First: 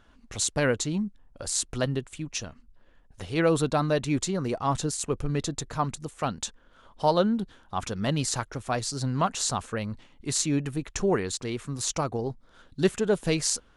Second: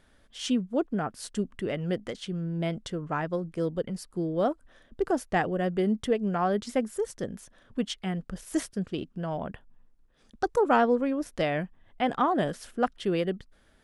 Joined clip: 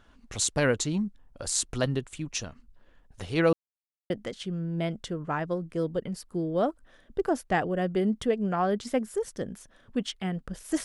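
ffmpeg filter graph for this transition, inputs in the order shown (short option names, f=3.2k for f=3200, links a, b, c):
-filter_complex "[0:a]apad=whole_dur=10.84,atrim=end=10.84,asplit=2[a][b];[a]atrim=end=3.53,asetpts=PTS-STARTPTS,afade=t=out:st=3.526:d=0.004:c=hsin[c];[b]atrim=start=3.53:end=4.1,asetpts=PTS-STARTPTS,volume=0[d];[1:a]atrim=start=1.92:end=8.66,asetpts=PTS-STARTPTS,afade=t=in:d=0.004:c=hsin[e];[c][d][e]concat=n=3:v=0:a=1"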